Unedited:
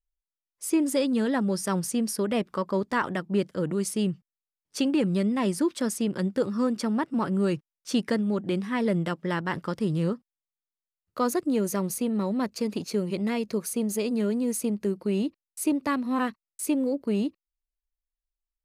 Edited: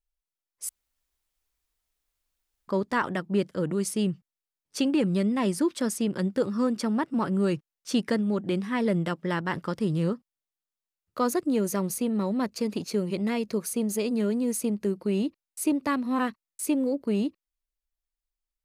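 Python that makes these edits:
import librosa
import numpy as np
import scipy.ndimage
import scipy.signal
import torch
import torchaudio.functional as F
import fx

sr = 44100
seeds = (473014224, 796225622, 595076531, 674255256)

y = fx.edit(x, sr, fx.room_tone_fill(start_s=0.69, length_s=1.99), tone=tone)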